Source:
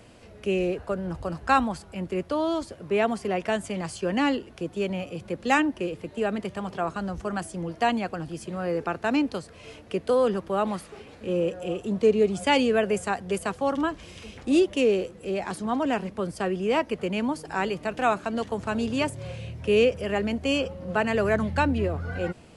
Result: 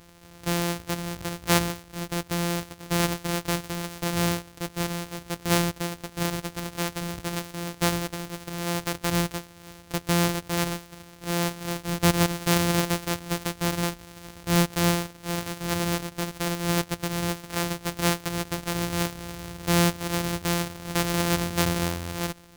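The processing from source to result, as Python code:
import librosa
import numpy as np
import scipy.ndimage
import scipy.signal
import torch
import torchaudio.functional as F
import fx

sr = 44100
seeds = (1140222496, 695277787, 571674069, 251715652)

y = np.r_[np.sort(x[:len(x) // 256 * 256].reshape(-1, 256), axis=1).ravel(), x[len(x) // 256 * 256:]]
y = fx.high_shelf(y, sr, hz=2800.0, db=7.0)
y = y * 10.0 ** (-2.0 / 20.0)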